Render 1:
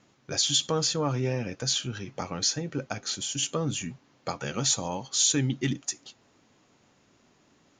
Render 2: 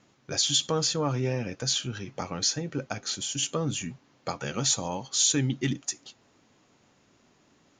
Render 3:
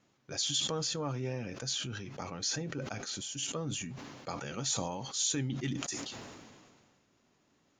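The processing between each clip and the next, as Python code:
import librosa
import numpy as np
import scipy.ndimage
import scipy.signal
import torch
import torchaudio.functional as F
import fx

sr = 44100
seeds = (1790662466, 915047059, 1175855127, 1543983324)

y1 = x
y2 = fx.sustainer(y1, sr, db_per_s=31.0)
y2 = y2 * 10.0 ** (-8.5 / 20.0)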